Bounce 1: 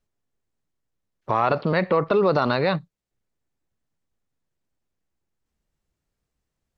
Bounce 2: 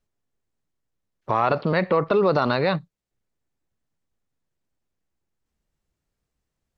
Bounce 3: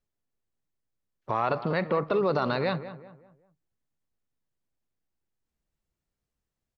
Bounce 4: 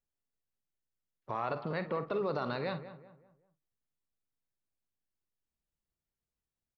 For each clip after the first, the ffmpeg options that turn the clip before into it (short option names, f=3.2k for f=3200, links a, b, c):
-af anull
-filter_complex "[0:a]asplit=2[a][b];[b]adelay=191,lowpass=f=1.9k:p=1,volume=-12.5dB,asplit=2[c][d];[d]adelay=191,lowpass=f=1.9k:p=1,volume=0.39,asplit=2[e][f];[f]adelay=191,lowpass=f=1.9k:p=1,volume=0.39,asplit=2[g][h];[h]adelay=191,lowpass=f=1.9k:p=1,volume=0.39[i];[a][c][e][g][i]amix=inputs=5:normalize=0,volume=-6dB"
-filter_complex "[0:a]asplit=2[a][b];[b]adelay=50,volume=-12dB[c];[a][c]amix=inputs=2:normalize=0,volume=-8.5dB"